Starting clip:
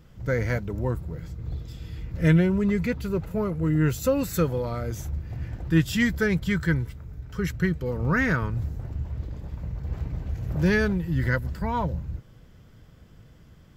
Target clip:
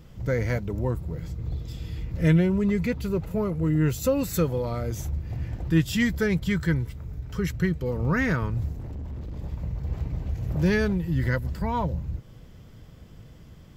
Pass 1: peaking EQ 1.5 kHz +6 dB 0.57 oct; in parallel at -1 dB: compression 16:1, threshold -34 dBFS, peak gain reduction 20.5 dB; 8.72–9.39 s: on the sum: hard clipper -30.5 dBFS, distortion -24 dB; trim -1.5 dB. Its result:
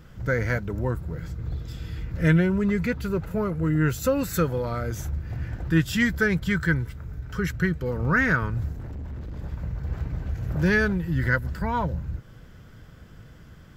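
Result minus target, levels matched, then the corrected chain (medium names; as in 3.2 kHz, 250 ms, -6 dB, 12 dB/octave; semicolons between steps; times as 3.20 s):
2 kHz band +5.5 dB
peaking EQ 1.5 kHz -4.5 dB 0.57 oct; in parallel at -1 dB: compression 16:1, threshold -34 dBFS, peak gain reduction 20 dB; 8.72–9.39 s: on the sum: hard clipper -30.5 dBFS, distortion -23 dB; trim -1.5 dB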